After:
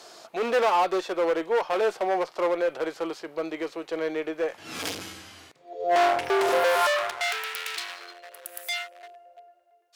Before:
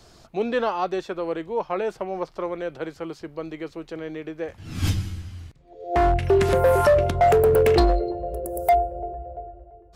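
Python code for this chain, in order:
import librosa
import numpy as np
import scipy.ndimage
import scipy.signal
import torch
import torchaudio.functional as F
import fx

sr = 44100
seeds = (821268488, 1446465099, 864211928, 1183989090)

y = np.clip(10.0 ** (26.5 / 20.0) * x, -1.0, 1.0) / 10.0 ** (26.5 / 20.0)
y = fx.filter_sweep_highpass(y, sr, from_hz=520.0, to_hz=2500.0, start_s=6.55, end_s=7.56, q=0.91)
y = fx.hpss(y, sr, part='harmonic', gain_db=6)
y = fx.cheby_harmonics(y, sr, harmonics=(4, 6), levels_db=(-32, -32), full_scale_db=-14.5)
y = F.gain(torch.from_numpy(y), 3.0).numpy()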